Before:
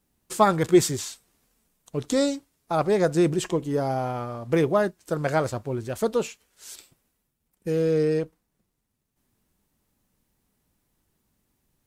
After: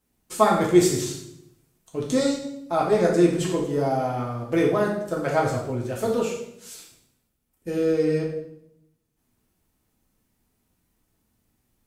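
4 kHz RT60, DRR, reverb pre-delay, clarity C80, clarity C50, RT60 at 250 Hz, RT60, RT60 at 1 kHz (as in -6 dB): 0.65 s, -3.0 dB, 3 ms, 8.0 dB, 4.5 dB, 1.0 s, 0.75 s, 0.70 s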